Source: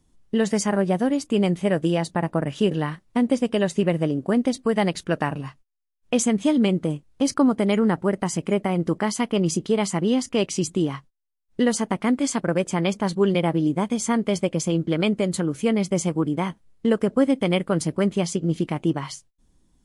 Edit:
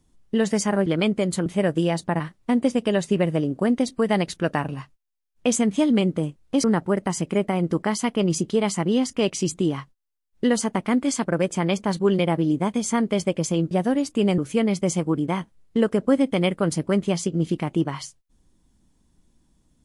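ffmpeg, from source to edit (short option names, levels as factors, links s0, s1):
-filter_complex "[0:a]asplit=7[s0][s1][s2][s3][s4][s5][s6];[s0]atrim=end=0.862[s7];[s1]atrim=start=14.868:end=15.472[s8];[s2]atrim=start=1.528:end=2.272[s9];[s3]atrim=start=2.868:end=7.312[s10];[s4]atrim=start=7.798:end=14.872[s11];[s5]atrim=start=0.858:end=1.532[s12];[s6]atrim=start=15.468[s13];[s7][s8]acrossfade=d=0.004:c1=hsin:c2=hsin[s14];[s14][s9]acrossfade=d=0.004:c1=hsin:c2=hsin[s15];[s15][s10]acrossfade=d=0.004:c1=hsin:c2=hsin[s16];[s16][s11]acrossfade=d=0.004:c1=hsin:c2=hsin[s17];[s17][s12]acrossfade=d=0.004:c1=hsin:c2=hsin[s18];[s18][s13]acrossfade=d=0.004:c1=hsin:c2=hsin"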